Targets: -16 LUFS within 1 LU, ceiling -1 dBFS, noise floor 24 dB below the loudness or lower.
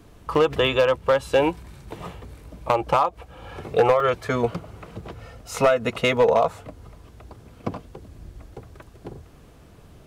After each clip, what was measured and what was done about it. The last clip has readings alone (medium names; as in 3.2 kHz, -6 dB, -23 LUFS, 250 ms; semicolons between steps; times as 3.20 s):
clipped samples 0.4%; clipping level -11.0 dBFS; dropouts 3; longest dropout 2.6 ms; loudness -22.0 LUFS; peak level -11.0 dBFS; loudness target -16.0 LUFS
-> clip repair -11 dBFS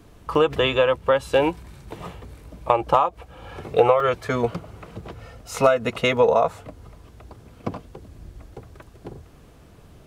clipped samples 0.0%; dropouts 3; longest dropout 2.6 ms
-> interpolate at 0.35/4.00/6.17 s, 2.6 ms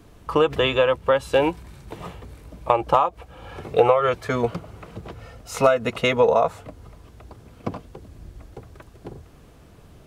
dropouts 0; loudness -21.0 LUFS; peak level -2.5 dBFS; loudness target -16.0 LUFS
-> trim +5 dB; peak limiter -1 dBFS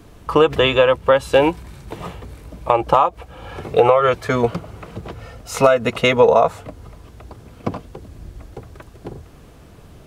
loudness -16.5 LUFS; peak level -1.0 dBFS; noise floor -44 dBFS